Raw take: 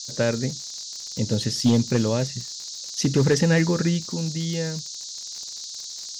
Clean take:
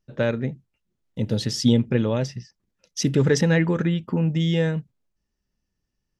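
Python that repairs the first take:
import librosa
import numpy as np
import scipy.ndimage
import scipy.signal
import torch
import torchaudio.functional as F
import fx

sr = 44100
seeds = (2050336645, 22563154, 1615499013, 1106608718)

y = fx.fix_declip(x, sr, threshold_db=-11.5)
y = fx.fix_declick_ar(y, sr, threshold=6.5)
y = fx.noise_reduce(y, sr, print_start_s=5.66, print_end_s=6.16, reduce_db=30.0)
y = fx.gain(y, sr, db=fx.steps((0.0, 0.0), (4.06, 6.0)))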